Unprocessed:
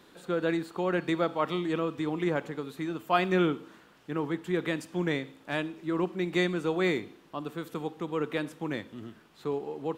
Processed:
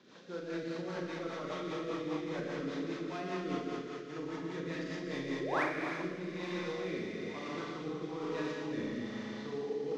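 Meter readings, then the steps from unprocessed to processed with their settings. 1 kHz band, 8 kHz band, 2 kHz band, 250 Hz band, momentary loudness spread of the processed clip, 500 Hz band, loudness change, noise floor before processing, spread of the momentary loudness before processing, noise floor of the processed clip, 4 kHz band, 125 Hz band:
−7.5 dB, −3.5 dB, −6.0 dB, −7.0 dB, 4 LU, −7.0 dB, −7.5 dB, −58 dBFS, 10 LU, −44 dBFS, −7.0 dB, −8.5 dB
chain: variable-slope delta modulation 32 kbit/s
high-pass filter 120 Hz
reversed playback
downward compressor 10 to 1, threshold −35 dBFS, peak gain reduction 15 dB
reversed playback
feedback echo with a high-pass in the loop 117 ms, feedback 82%, high-pass 160 Hz, level −7 dB
sound drawn into the spectrogram rise, 0:05.40–0:05.64, 310–2,600 Hz −31 dBFS
in parallel at −6 dB: hard clipping −34 dBFS, distortion −12 dB
on the sum: four-comb reverb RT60 2.2 s, combs from 29 ms, DRR −5 dB
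rotating-speaker cabinet horn 5 Hz, later 1.1 Hz, at 0:05.26
level −6.5 dB

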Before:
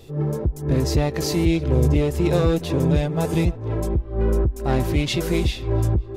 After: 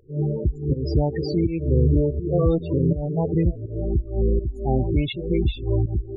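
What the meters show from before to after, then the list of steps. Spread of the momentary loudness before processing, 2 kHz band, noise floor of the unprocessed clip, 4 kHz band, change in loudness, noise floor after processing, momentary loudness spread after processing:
5 LU, below −10 dB, −35 dBFS, can't be measured, −1.5 dB, −37 dBFS, 5 LU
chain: fake sidechain pumping 82 BPM, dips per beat 1, −16 dB, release 257 ms
spectral peaks only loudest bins 16

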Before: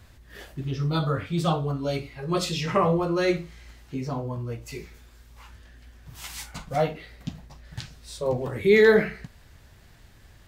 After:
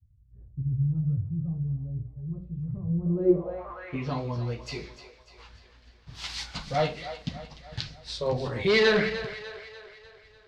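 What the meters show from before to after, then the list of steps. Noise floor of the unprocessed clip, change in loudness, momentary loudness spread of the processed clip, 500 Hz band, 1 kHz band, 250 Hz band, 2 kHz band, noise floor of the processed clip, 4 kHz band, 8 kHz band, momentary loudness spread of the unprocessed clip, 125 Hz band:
−53 dBFS, −4.0 dB, 17 LU, −4.5 dB, −5.5 dB, −2.0 dB, −2.0 dB, −57 dBFS, +1.0 dB, −6.5 dB, 20 LU, 0.0 dB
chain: downward expander −42 dBFS
dynamic equaliser 330 Hz, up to −4 dB, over −33 dBFS, Q 1
hard clipping −18.5 dBFS, distortion −13 dB
on a send: echo with a time of its own for lows and highs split 430 Hz, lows 81 ms, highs 297 ms, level −12 dB
on the sum: tape wow and flutter 25 cents
low-pass filter sweep 110 Hz → 4,500 Hz, 0:02.88–0:04.19

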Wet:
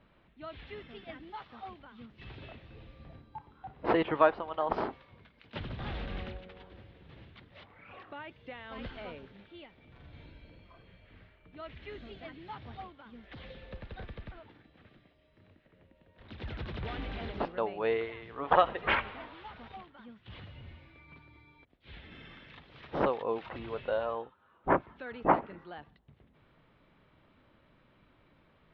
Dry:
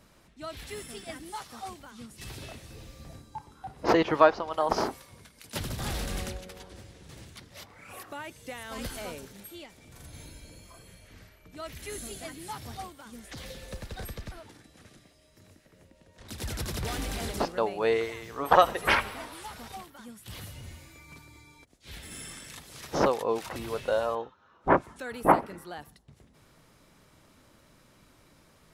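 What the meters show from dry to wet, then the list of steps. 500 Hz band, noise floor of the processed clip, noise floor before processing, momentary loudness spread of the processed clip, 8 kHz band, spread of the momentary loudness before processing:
−4.5 dB, −66 dBFS, −61 dBFS, 23 LU, below −35 dB, 23 LU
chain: Butterworth low-pass 3,500 Hz 36 dB per octave
level −4.5 dB

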